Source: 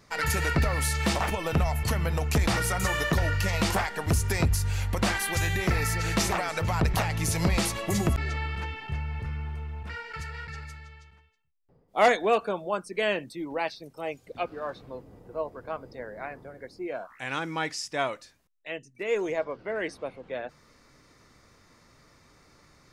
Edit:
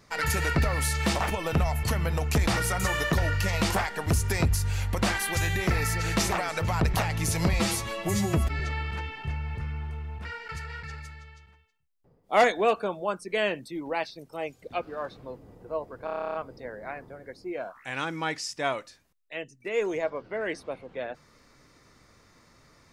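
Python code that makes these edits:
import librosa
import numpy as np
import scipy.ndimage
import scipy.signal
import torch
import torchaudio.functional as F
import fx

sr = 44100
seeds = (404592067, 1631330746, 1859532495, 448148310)

y = fx.edit(x, sr, fx.stretch_span(start_s=7.53, length_s=0.71, factor=1.5),
    fx.stutter(start_s=15.69, slice_s=0.03, count=11), tone=tone)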